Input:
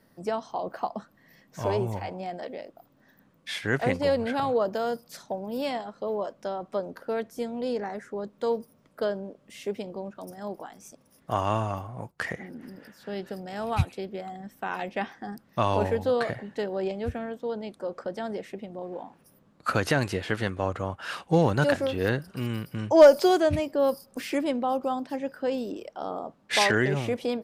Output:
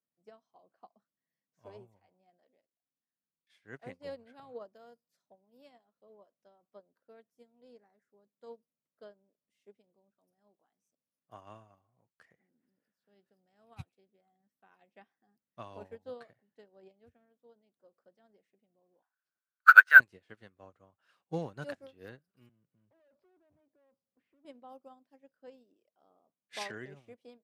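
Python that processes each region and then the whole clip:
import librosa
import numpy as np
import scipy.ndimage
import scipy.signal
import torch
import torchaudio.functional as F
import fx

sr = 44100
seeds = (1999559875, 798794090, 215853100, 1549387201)

y = fx.chain(x, sr, fx.notch(hz=600.0, q=13.0),
    fx.level_steps(step_db=22), at=(2.6, 3.5))
y = fx.chain(y, sr, fx.highpass_res(hz=1500.0, q=14.0),
    fx.resample_linear(factor=3), at=(19.02, 20.0))
y = fx.chain(y, sr, fx.tube_stage(drive_db=30.0, bias=0.3),
    fx.spacing_loss(db_at_10k=40),
    fx.band_squash(depth_pct=40), at=(22.49, 24.45))
y = scipy.signal.sosfilt(scipy.signal.butter(2, 99.0, 'highpass', fs=sr, output='sos'), y)
y = fx.notch(y, sr, hz=880.0, q=16.0)
y = fx.upward_expand(y, sr, threshold_db=-34.0, expansion=2.5)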